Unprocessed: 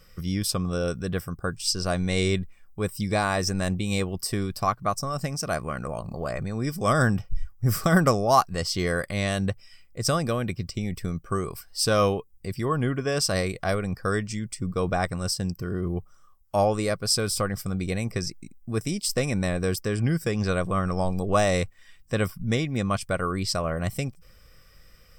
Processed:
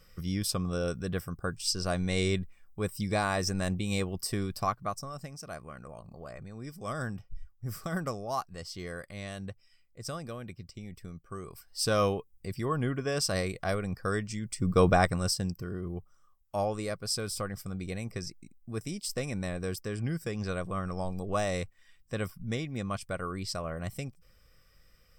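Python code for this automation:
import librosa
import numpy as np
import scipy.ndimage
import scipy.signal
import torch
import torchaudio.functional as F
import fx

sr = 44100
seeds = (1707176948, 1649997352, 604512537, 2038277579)

y = fx.gain(x, sr, db=fx.line((4.61, -4.5), (5.32, -14.0), (11.35, -14.0), (11.87, -5.0), (14.41, -5.0), (14.8, 4.5), (15.82, -8.5)))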